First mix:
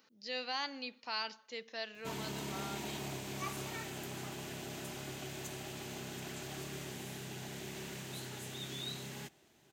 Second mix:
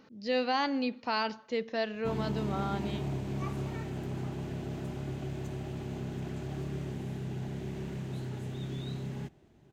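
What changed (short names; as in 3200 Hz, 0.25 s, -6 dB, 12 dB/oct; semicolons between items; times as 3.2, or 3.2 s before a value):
speech +9.5 dB; master: add tilt -4 dB/oct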